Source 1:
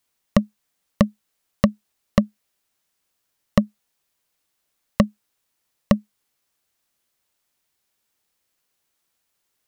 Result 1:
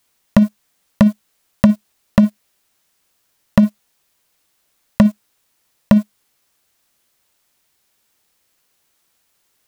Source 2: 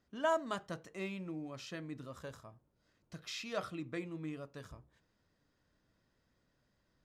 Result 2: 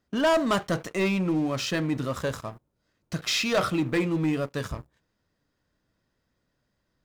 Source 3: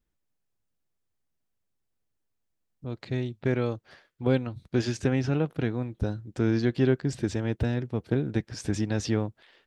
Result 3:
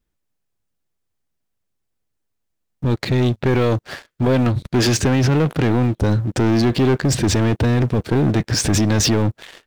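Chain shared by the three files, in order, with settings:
in parallel at +3 dB: compressor with a negative ratio -32 dBFS, ratio -1; on the sum: waveshaping leveller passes 3; trim -1 dB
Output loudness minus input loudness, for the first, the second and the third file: +7.5 LU, +15.0 LU, +10.5 LU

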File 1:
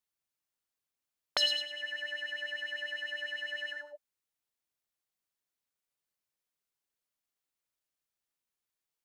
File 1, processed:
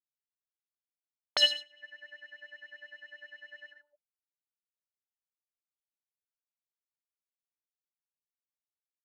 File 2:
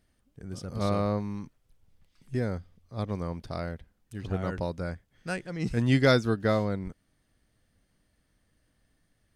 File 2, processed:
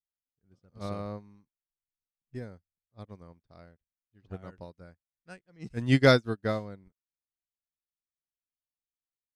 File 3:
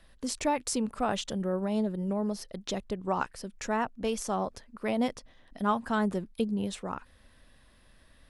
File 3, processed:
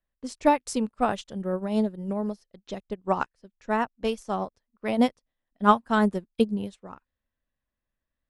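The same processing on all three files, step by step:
level-controlled noise filter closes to 2.6 kHz, open at -27 dBFS; upward expansion 2.5:1, over -48 dBFS; normalise loudness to -27 LUFS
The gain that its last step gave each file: +7.0 dB, +3.0 dB, +10.5 dB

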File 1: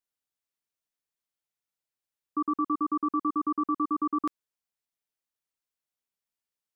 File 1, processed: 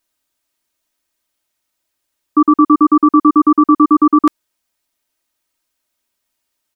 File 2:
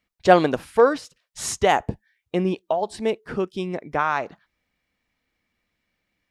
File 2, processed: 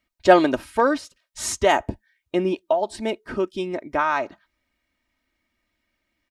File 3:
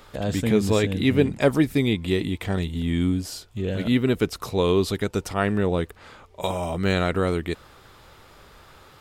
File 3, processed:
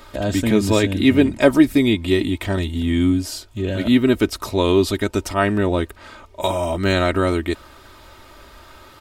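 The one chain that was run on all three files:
comb 3.2 ms, depth 61%; peak normalisation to -1.5 dBFS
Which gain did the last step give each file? +15.5 dB, -0.5 dB, +4.0 dB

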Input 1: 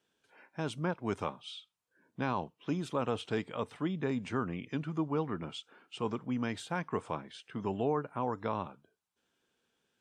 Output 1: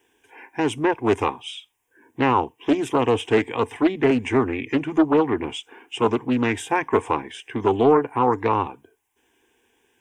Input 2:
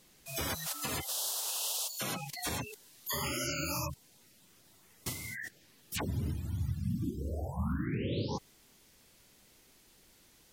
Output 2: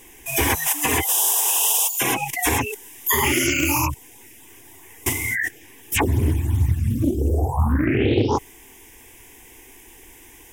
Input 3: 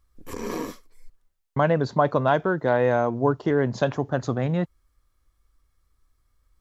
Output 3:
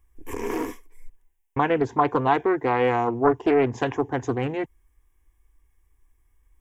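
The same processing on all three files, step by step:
static phaser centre 880 Hz, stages 8; loudspeaker Doppler distortion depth 0.32 ms; peak normalisation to -6 dBFS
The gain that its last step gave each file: +17.5 dB, +19.5 dB, +5.0 dB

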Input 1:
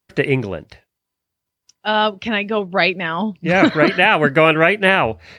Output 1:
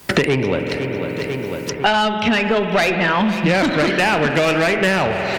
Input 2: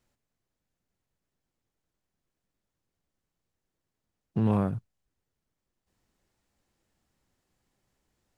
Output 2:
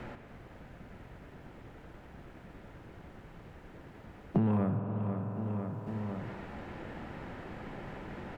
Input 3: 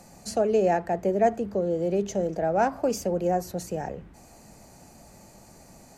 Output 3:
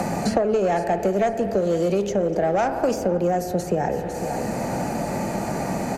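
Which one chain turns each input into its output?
band-stop 1.1 kHz, Q 15; in parallel at -2 dB: compression 6:1, threshold -25 dBFS; on the sum: spring tank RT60 1.7 s, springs 47 ms, chirp 80 ms, DRR 10 dB; valve stage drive 13 dB, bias 0.2; on a send: feedback delay 500 ms, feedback 30%, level -19 dB; on the sum: three bands compressed up and down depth 100%; trim +1.5 dB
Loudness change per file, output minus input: -1.5 LU, -7.5 LU, +3.0 LU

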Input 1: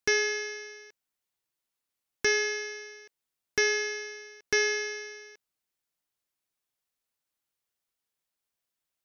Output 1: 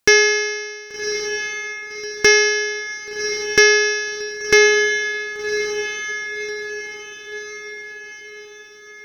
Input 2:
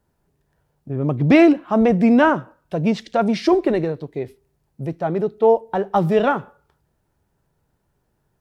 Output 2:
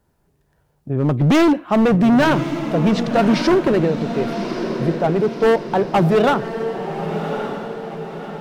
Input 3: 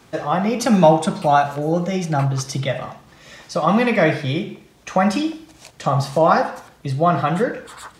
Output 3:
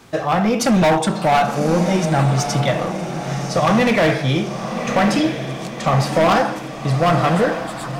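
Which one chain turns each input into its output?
overload inside the chain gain 15.5 dB; on a send: echo that smears into a reverb 1128 ms, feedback 50%, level -8 dB; on the sum: normalise loudness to -18 LUFS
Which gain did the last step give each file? +13.0 dB, +4.0 dB, +3.5 dB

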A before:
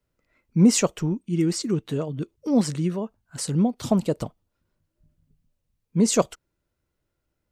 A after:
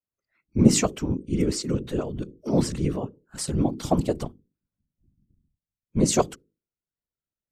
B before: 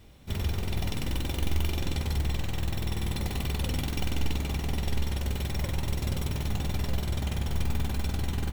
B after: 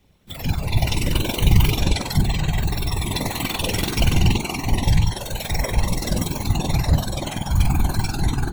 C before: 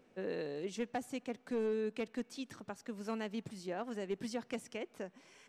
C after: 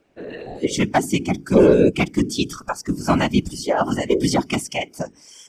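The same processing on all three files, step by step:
spectral noise reduction 19 dB; hum notches 50/100/150/200/250/300/350/400 Hz; whisper effect; peak normalisation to -1.5 dBFS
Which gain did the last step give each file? -0.5 dB, +13.5 dB, +23.0 dB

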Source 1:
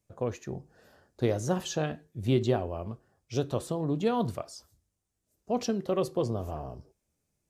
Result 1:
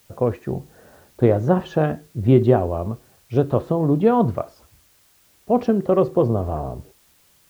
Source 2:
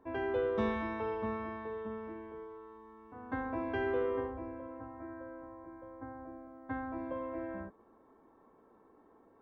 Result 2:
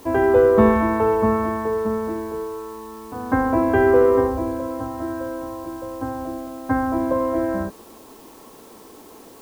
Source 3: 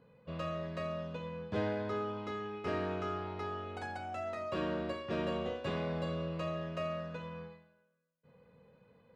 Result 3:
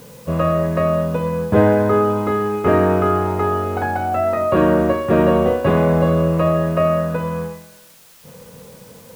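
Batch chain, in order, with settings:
low-pass 1.5 kHz 12 dB/octave; added noise white -69 dBFS; peak normalisation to -3 dBFS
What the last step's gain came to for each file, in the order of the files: +11.0 dB, +18.0 dB, +21.5 dB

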